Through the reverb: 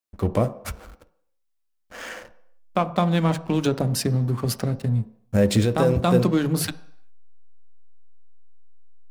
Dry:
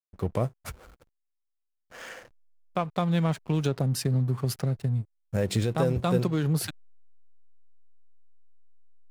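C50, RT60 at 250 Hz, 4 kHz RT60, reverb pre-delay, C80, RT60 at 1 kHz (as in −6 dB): 16.5 dB, 0.55 s, 0.70 s, 3 ms, 19.5 dB, 0.70 s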